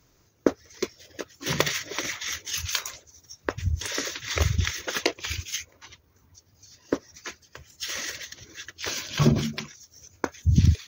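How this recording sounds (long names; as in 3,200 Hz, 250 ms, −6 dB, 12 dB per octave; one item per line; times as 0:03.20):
background noise floor −63 dBFS
spectral slope −4.0 dB per octave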